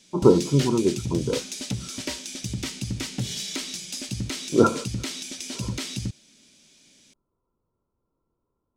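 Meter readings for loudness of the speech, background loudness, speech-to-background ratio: -22.5 LUFS, -31.5 LUFS, 9.0 dB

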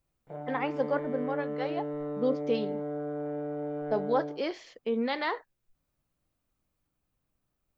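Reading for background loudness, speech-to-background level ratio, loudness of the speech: -36.0 LUFS, 3.5 dB, -32.5 LUFS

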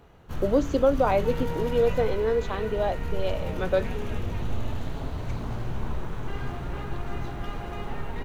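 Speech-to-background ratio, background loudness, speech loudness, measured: 7.5 dB, -34.0 LUFS, -26.5 LUFS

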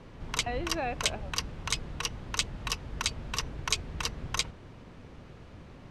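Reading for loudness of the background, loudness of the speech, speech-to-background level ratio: -33.0 LUFS, -37.0 LUFS, -4.0 dB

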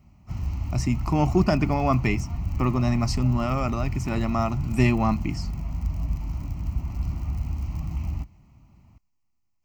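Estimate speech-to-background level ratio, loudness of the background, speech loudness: 6.5 dB, -31.5 LUFS, -25.0 LUFS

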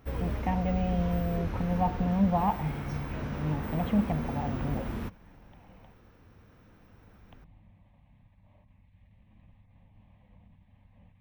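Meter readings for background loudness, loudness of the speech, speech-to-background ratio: -36.0 LUFS, -31.0 LUFS, 5.0 dB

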